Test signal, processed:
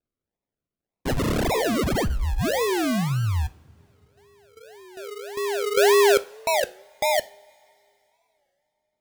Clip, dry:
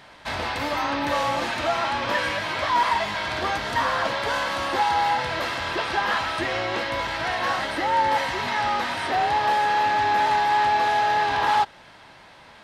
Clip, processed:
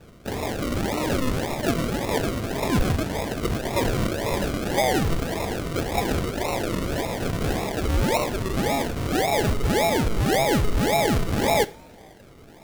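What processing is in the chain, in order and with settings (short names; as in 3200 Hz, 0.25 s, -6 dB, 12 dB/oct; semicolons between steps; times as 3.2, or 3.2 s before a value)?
decimation with a swept rate 41×, swing 60% 1.8 Hz; two-slope reverb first 0.35 s, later 3.1 s, from -22 dB, DRR 13.5 dB; record warp 33 1/3 rpm, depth 160 cents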